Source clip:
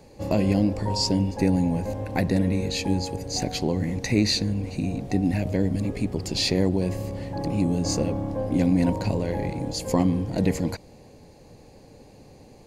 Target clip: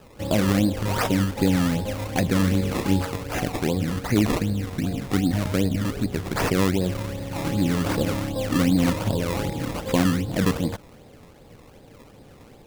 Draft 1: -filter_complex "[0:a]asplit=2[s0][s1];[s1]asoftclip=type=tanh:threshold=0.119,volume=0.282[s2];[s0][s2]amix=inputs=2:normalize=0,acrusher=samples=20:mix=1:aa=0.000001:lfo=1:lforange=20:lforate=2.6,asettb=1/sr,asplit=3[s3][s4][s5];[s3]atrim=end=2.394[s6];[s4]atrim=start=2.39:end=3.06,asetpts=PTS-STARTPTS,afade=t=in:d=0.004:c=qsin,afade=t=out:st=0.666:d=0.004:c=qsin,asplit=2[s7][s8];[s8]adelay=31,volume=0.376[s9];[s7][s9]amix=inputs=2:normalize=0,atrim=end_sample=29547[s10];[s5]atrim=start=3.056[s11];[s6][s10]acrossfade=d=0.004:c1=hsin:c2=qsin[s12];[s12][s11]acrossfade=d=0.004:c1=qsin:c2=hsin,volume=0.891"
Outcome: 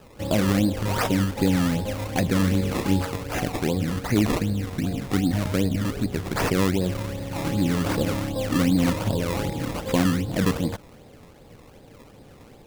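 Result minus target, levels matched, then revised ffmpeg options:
saturation: distortion +16 dB
-filter_complex "[0:a]asplit=2[s0][s1];[s1]asoftclip=type=tanh:threshold=0.447,volume=0.282[s2];[s0][s2]amix=inputs=2:normalize=0,acrusher=samples=20:mix=1:aa=0.000001:lfo=1:lforange=20:lforate=2.6,asettb=1/sr,asplit=3[s3][s4][s5];[s3]atrim=end=2.394[s6];[s4]atrim=start=2.39:end=3.06,asetpts=PTS-STARTPTS,afade=t=in:d=0.004:c=qsin,afade=t=out:st=0.666:d=0.004:c=qsin,asplit=2[s7][s8];[s8]adelay=31,volume=0.376[s9];[s7][s9]amix=inputs=2:normalize=0,atrim=end_sample=29547[s10];[s5]atrim=start=3.056[s11];[s6][s10]acrossfade=d=0.004:c1=hsin:c2=qsin[s12];[s12][s11]acrossfade=d=0.004:c1=qsin:c2=hsin,volume=0.891"

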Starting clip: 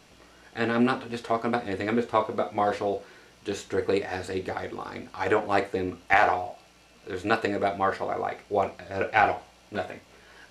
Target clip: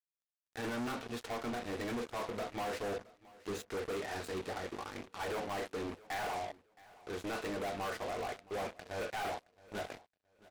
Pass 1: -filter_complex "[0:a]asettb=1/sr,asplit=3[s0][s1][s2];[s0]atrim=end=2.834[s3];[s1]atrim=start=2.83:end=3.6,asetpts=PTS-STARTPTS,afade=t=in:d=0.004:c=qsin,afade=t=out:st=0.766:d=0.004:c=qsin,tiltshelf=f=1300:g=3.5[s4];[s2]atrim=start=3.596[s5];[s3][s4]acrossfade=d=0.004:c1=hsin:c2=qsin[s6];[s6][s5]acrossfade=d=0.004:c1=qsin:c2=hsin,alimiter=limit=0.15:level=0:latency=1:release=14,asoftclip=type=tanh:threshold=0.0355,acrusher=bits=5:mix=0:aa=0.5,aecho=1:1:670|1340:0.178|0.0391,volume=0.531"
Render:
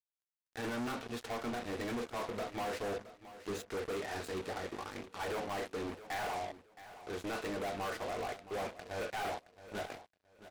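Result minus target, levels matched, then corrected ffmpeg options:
echo-to-direct +6.5 dB
-filter_complex "[0:a]asettb=1/sr,asplit=3[s0][s1][s2];[s0]atrim=end=2.834[s3];[s1]atrim=start=2.83:end=3.6,asetpts=PTS-STARTPTS,afade=t=in:d=0.004:c=qsin,afade=t=out:st=0.766:d=0.004:c=qsin,tiltshelf=f=1300:g=3.5[s4];[s2]atrim=start=3.596[s5];[s3][s4]acrossfade=d=0.004:c1=hsin:c2=qsin[s6];[s6][s5]acrossfade=d=0.004:c1=qsin:c2=hsin,alimiter=limit=0.15:level=0:latency=1:release=14,asoftclip=type=tanh:threshold=0.0355,acrusher=bits=5:mix=0:aa=0.5,aecho=1:1:670|1340:0.0841|0.0185,volume=0.531"

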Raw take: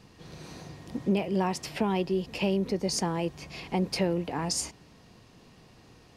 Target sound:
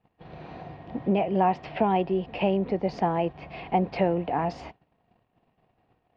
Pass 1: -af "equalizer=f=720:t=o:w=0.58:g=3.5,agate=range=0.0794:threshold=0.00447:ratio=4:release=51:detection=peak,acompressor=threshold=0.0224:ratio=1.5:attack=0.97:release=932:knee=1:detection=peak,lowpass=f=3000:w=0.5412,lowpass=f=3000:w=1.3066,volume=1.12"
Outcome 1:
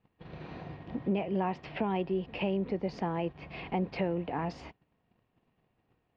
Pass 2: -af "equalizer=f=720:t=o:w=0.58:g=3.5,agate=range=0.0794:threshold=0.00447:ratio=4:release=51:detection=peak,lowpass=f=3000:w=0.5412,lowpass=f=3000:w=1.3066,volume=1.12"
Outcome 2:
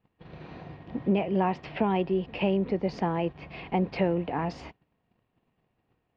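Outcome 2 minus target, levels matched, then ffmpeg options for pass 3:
1 kHz band -3.5 dB
-af "equalizer=f=720:t=o:w=0.58:g=11,agate=range=0.0794:threshold=0.00447:ratio=4:release=51:detection=peak,lowpass=f=3000:w=0.5412,lowpass=f=3000:w=1.3066,volume=1.12"

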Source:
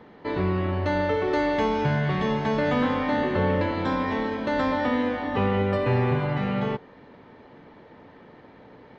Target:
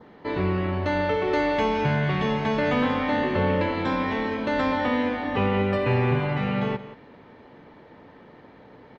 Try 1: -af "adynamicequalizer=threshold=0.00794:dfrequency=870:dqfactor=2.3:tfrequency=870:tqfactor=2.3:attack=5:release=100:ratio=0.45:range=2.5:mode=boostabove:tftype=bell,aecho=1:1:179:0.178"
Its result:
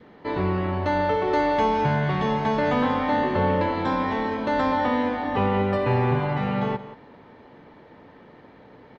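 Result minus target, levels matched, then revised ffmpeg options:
1 kHz band +3.0 dB
-af "adynamicequalizer=threshold=0.00794:dfrequency=2500:dqfactor=2.3:tfrequency=2500:tqfactor=2.3:attack=5:release=100:ratio=0.45:range=2.5:mode=boostabove:tftype=bell,aecho=1:1:179:0.178"

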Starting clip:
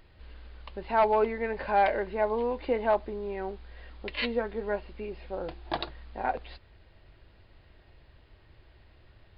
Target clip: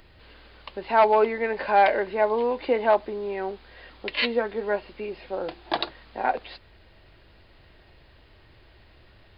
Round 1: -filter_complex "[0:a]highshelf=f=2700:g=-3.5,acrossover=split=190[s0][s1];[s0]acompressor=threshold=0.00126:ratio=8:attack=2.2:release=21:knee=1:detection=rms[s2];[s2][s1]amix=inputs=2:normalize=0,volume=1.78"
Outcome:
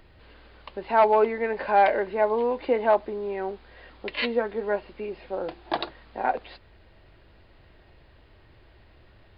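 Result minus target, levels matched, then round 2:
4 kHz band -4.0 dB
-filter_complex "[0:a]highshelf=f=2700:g=4,acrossover=split=190[s0][s1];[s0]acompressor=threshold=0.00126:ratio=8:attack=2.2:release=21:knee=1:detection=rms[s2];[s2][s1]amix=inputs=2:normalize=0,volume=1.78"

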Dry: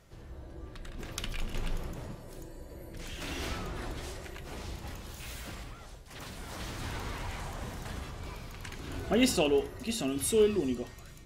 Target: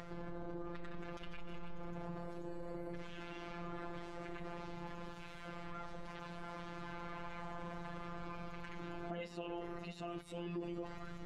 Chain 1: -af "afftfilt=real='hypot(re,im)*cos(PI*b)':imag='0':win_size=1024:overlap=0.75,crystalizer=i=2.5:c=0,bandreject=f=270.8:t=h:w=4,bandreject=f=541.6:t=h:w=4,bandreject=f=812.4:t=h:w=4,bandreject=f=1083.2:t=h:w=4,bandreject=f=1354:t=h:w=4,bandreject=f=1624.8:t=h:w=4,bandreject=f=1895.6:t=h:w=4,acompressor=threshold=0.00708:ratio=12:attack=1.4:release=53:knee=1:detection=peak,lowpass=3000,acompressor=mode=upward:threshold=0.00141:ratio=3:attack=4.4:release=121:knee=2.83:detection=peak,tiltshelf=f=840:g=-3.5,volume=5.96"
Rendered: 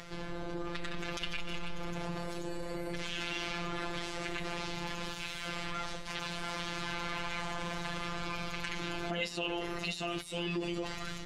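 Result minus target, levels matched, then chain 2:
4 kHz band +9.0 dB; compression: peak gain reduction -6.5 dB
-af "afftfilt=real='hypot(re,im)*cos(PI*b)':imag='0':win_size=1024:overlap=0.75,crystalizer=i=2.5:c=0,bandreject=f=270.8:t=h:w=4,bandreject=f=541.6:t=h:w=4,bandreject=f=812.4:t=h:w=4,bandreject=f=1083.2:t=h:w=4,bandreject=f=1354:t=h:w=4,bandreject=f=1624.8:t=h:w=4,bandreject=f=1895.6:t=h:w=4,acompressor=threshold=0.00316:ratio=12:attack=1.4:release=53:knee=1:detection=peak,lowpass=1300,acompressor=mode=upward:threshold=0.00141:ratio=3:attack=4.4:release=121:knee=2.83:detection=peak,tiltshelf=f=840:g=-3.5,volume=5.96"

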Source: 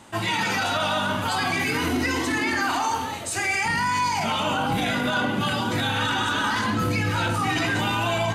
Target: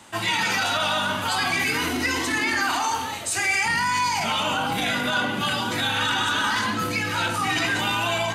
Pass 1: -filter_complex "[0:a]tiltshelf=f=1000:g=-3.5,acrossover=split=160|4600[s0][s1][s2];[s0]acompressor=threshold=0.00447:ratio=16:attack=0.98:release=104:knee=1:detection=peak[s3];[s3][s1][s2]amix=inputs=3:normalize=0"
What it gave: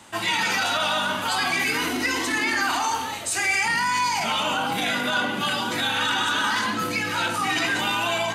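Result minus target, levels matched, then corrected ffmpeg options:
compression: peak gain reduction +11 dB
-filter_complex "[0:a]tiltshelf=f=1000:g=-3.5,acrossover=split=160|4600[s0][s1][s2];[s0]acompressor=threshold=0.0168:ratio=16:attack=0.98:release=104:knee=1:detection=peak[s3];[s3][s1][s2]amix=inputs=3:normalize=0"

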